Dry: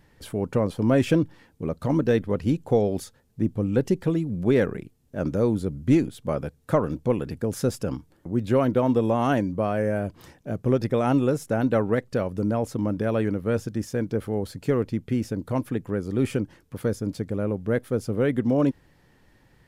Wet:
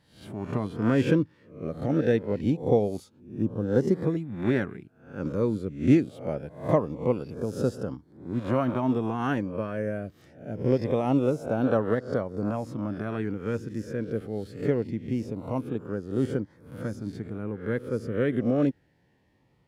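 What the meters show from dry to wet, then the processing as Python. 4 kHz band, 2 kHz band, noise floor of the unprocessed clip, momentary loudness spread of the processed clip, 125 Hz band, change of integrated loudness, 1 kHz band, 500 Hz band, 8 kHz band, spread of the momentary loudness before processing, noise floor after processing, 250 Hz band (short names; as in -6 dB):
-5.0 dB, -2.5 dB, -60 dBFS, 12 LU, -3.5 dB, -3.0 dB, -3.5 dB, -3.0 dB, under -10 dB, 9 LU, -65 dBFS, -2.5 dB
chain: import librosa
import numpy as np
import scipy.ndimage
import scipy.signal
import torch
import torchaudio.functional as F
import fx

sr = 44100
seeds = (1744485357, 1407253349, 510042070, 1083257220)

y = fx.spec_swells(x, sr, rise_s=0.53)
y = scipy.signal.sosfilt(scipy.signal.butter(2, 73.0, 'highpass', fs=sr, output='sos'), y)
y = fx.high_shelf(y, sr, hz=5500.0, db=-11.5)
y = fx.filter_lfo_notch(y, sr, shape='saw_up', hz=0.24, low_hz=390.0, high_hz=3000.0, q=2.4)
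y = fx.upward_expand(y, sr, threshold_db=-30.0, expansion=1.5)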